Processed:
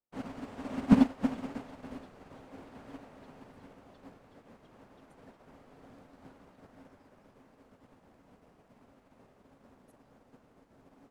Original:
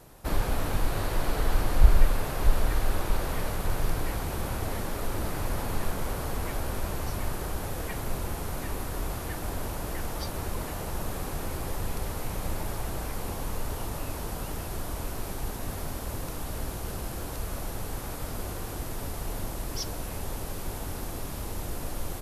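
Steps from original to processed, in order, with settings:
low-pass filter 4,200 Hz 12 dB per octave
parametric band 410 Hz +12.5 dB 1.7 octaves
frequency shifter −150 Hz
wrong playback speed 7.5 ips tape played at 15 ips
expander for the loud parts 2.5 to 1, over −44 dBFS
level −3 dB

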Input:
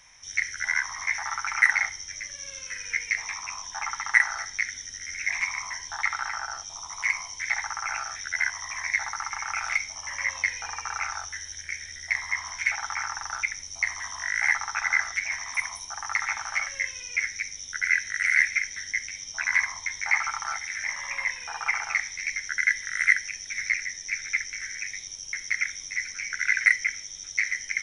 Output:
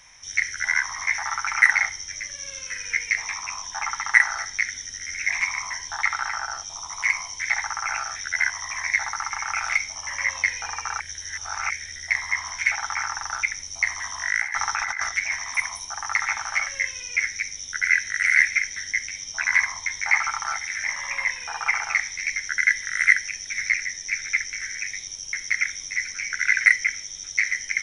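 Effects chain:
0:11.00–0:11.70: reverse
0:14.30–0:15.09: compressor whose output falls as the input rises −30 dBFS, ratio −1
level +3.5 dB

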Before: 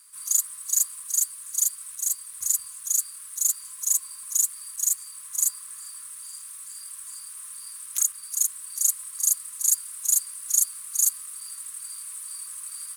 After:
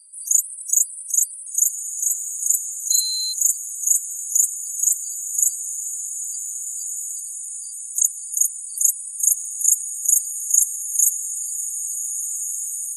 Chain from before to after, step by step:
parametric band 3,100 Hz −6.5 dB 0.54 octaves
feedback delay with all-pass diffusion 1,582 ms, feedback 50%, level −7 dB
0:02.90–0:03.32: steady tone 4,100 Hz −29 dBFS
spectral peaks only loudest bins 64
level +6.5 dB

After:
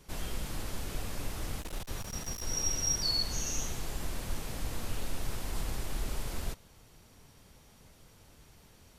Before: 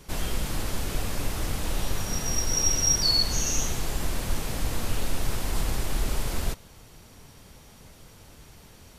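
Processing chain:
0:01.61–0:02.44: asymmetric clip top −29.5 dBFS, bottom −16.5 dBFS
level −8 dB

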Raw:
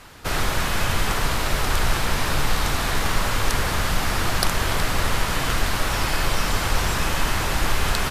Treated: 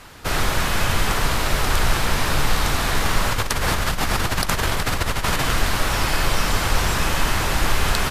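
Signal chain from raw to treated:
0:03.32–0:05.42: compressor whose output falls as the input rises −23 dBFS, ratio −1
level +2 dB

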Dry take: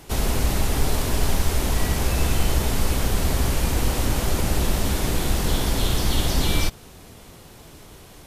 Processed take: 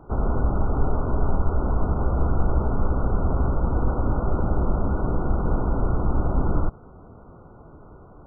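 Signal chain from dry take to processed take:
linear-phase brick-wall low-pass 1,500 Hz

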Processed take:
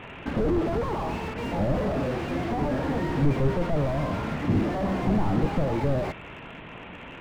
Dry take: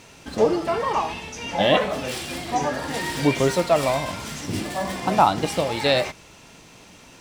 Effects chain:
variable-slope delta modulation 16 kbit/s
slew-rate limiting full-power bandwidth 12 Hz
level +7 dB

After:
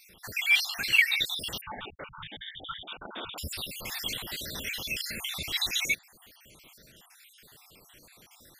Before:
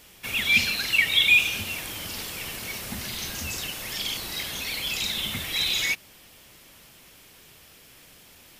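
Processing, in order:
time-frequency cells dropped at random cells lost 63%
0:01.61–0:03.38: voice inversion scrambler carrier 3,600 Hz

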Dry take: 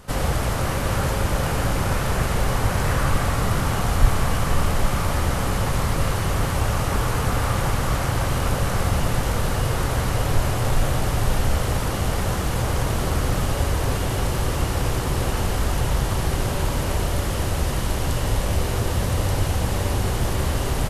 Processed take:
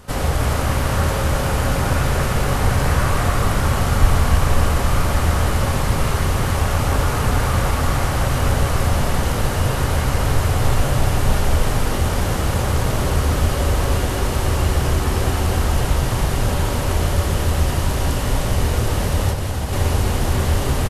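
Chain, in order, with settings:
single-tap delay 303 ms −5.5 dB
convolution reverb RT60 1.5 s, pre-delay 6 ms, DRR 9 dB
0:19.29–0:19.73: downward compressor, threshold −20 dBFS, peak gain reduction 6 dB
level +1.5 dB

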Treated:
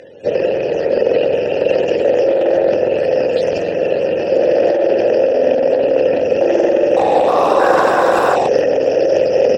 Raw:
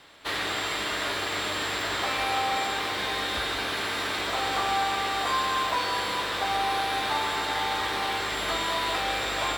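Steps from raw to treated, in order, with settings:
frequency axis turned over on the octave scale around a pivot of 520 Hz
high-shelf EQ 7,800 Hz −10 dB
sine wavefolder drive 12 dB, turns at −12 dBFS
formant filter e
bass and treble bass −13 dB, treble +13 dB
single-tap delay 268 ms −16 dB
compressor whose output falls as the input rises −29 dBFS, ratio −1
0:06.65–0:08.80: delay with pitch and tempo change per echo 316 ms, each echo +6 semitones, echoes 3
transient designer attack +5 dB, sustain +9 dB
boost into a limiter +16.5 dB
level −1 dB

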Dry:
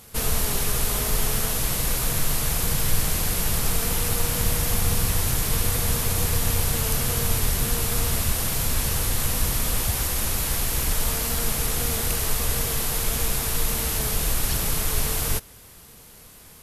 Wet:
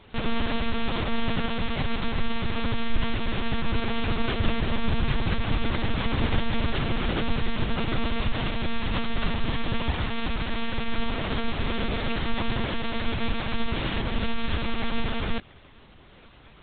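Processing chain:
one-pitch LPC vocoder at 8 kHz 230 Hz

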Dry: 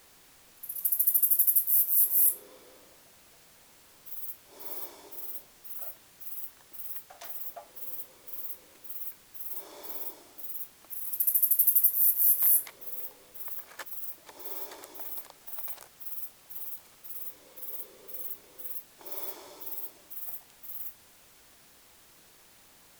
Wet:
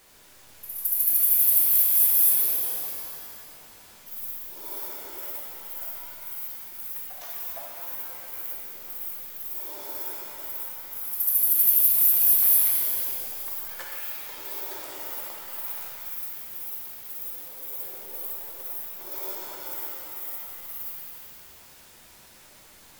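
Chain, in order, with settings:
reverb with rising layers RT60 2.3 s, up +7 semitones, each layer −2 dB, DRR −2.5 dB

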